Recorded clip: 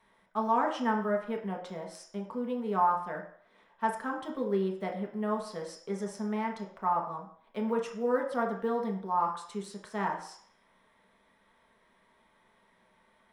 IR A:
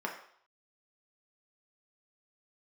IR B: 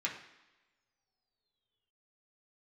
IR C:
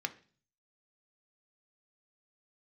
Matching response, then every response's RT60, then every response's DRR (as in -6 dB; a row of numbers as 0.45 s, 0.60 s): A; 0.60 s, no single decay rate, 0.40 s; -0.5 dB, -3.5 dB, 7.0 dB